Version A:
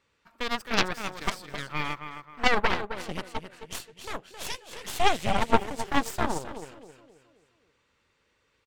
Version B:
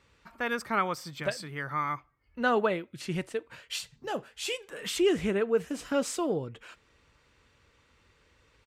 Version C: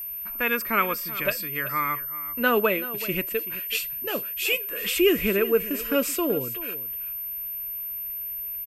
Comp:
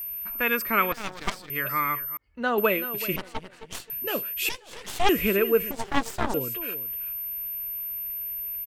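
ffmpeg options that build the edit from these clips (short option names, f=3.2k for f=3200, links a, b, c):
-filter_complex "[0:a]asplit=4[a][b][c][d];[2:a]asplit=6[e][f][g][h][i][j];[e]atrim=end=0.922[k];[a]atrim=start=0.918:end=1.502[l];[f]atrim=start=1.498:end=2.172[m];[1:a]atrim=start=2.168:end=2.582[n];[g]atrim=start=2.578:end=3.162[o];[b]atrim=start=3.158:end=3.902[p];[h]atrim=start=3.898:end=4.492[q];[c]atrim=start=4.488:end=5.092[r];[i]atrim=start=5.088:end=5.712[s];[d]atrim=start=5.708:end=6.342[t];[j]atrim=start=6.338[u];[k][l]acrossfade=d=0.004:c1=hsin:c2=hsin[v];[v][m]acrossfade=d=0.004:c1=hsin:c2=hsin[w];[w][n]acrossfade=d=0.004:c1=hsin:c2=hsin[x];[x][o]acrossfade=d=0.004:c1=hsin:c2=hsin[y];[y][p]acrossfade=d=0.004:c1=hsin:c2=hsin[z];[z][q]acrossfade=d=0.004:c1=hsin:c2=hsin[aa];[aa][r]acrossfade=d=0.004:c1=hsin:c2=hsin[ab];[ab][s]acrossfade=d=0.004:c1=hsin:c2=hsin[ac];[ac][t]acrossfade=d=0.004:c1=hsin:c2=hsin[ad];[ad][u]acrossfade=d=0.004:c1=hsin:c2=hsin"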